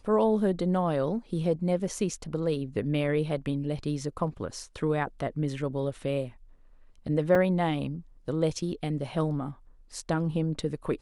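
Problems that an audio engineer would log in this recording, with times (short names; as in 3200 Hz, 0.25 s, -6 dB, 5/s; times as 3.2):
7.35 gap 3.4 ms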